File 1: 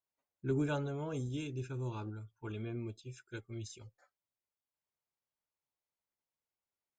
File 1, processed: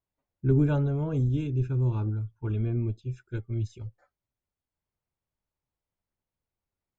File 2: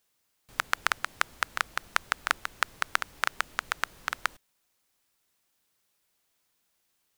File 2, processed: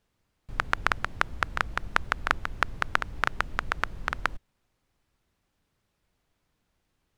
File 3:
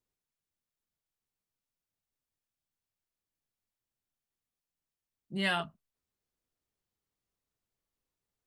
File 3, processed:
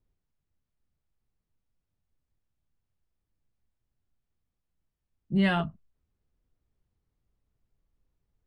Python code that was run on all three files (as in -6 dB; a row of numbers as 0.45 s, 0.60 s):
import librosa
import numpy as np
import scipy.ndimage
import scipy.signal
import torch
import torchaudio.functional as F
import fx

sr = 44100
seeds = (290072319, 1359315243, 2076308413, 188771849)

y = fx.riaa(x, sr, side='playback')
y = y * librosa.db_to_amplitude(3.0)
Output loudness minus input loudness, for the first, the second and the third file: +11.5 LU, +1.5 LU, +5.0 LU